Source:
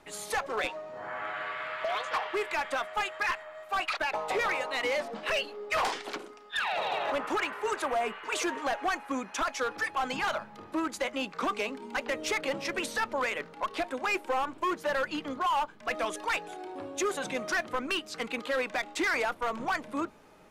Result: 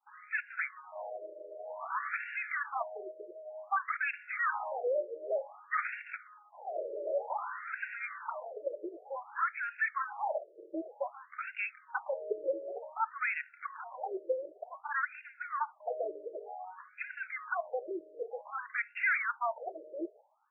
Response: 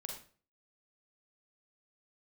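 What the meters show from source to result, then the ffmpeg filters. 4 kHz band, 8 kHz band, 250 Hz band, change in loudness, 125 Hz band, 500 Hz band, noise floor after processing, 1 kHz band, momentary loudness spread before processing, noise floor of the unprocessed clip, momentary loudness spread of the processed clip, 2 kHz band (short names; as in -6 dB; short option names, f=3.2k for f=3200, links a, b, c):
under -30 dB, under -40 dB, -12.5 dB, -5.0 dB, under -35 dB, -4.5 dB, -61 dBFS, -6.0 dB, 6 LU, -50 dBFS, 11 LU, -3.5 dB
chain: -filter_complex "[0:a]agate=range=-33dB:threshold=-47dB:ratio=3:detection=peak,asplit=2[a][b];[1:a]atrim=start_sample=2205,afade=t=out:st=0.15:d=0.01,atrim=end_sample=7056,atrim=end_sample=3528[c];[b][c]afir=irnorm=-1:irlink=0,volume=-15dB[d];[a][d]amix=inputs=2:normalize=0,afftfilt=real='re*between(b*sr/1024,430*pow(2000/430,0.5+0.5*sin(2*PI*0.54*pts/sr))/1.41,430*pow(2000/430,0.5+0.5*sin(2*PI*0.54*pts/sr))*1.41)':imag='im*between(b*sr/1024,430*pow(2000/430,0.5+0.5*sin(2*PI*0.54*pts/sr))/1.41,430*pow(2000/430,0.5+0.5*sin(2*PI*0.54*pts/sr))*1.41)':win_size=1024:overlap=0.75"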